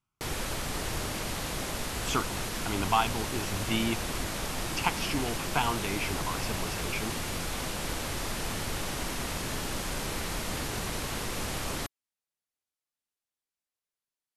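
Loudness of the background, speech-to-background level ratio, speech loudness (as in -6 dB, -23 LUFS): -33.5 LUFS, 0.5 dB, -33.0 LUFS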